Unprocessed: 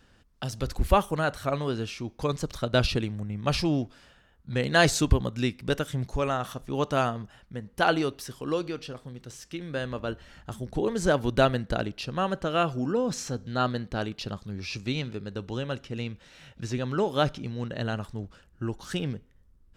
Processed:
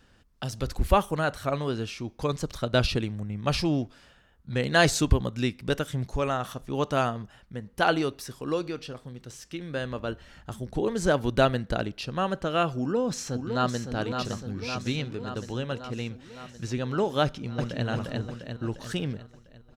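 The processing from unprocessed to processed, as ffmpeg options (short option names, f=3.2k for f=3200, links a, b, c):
-filter_complex "[0:a]asettb=1/sr,asplit=3[a][b][c];[a]atrim=end=8.124[d];[b]atrim=start=8.12:end=8.77,asetpts=PTS-STARTPTS,afade=t=in:d=0.004:c=qsin,afade=t=out:st=0.646:d=0.004:c=qsin,bandreject=f=3.1k:w=12[e];[c]atrim=start=8.766[f];[d][e]acrossfade=d=0.004:c1=hsin:c2=qsin[g];[g][f]acrossfade=d=0.004:c1=qsin:c2=hsin,asplit=2[h][i];[i]afade=t=in:st=12.79:d=0.01,afade=t=out:st=13.87:d=0.01,aecho=0:1:560|1120|1680|2240|2800|3360|3920|4480|5040|5600|6160:0.473151|0.331206|0.231844|0.162291|0.113604|0.0795225|0.0556658|0.038966|0.0272762|0.0190934|0.0133654[j];[h][j]amix=inputs=2:normalize=0,asplit=2[k][l];[l]afade=t=in:st=17.23:d=0.01,afade=t=out:st=17.86:d=0.01,aecho=0:1:350|700|1050|1400|1750|2100|2450|2800:0.841395|0.462767|0.254522|0.139987|0.0769929|0.0423461|0.0232904|0.0128097[m];[k][m]amix=inputs=2:normalize=0"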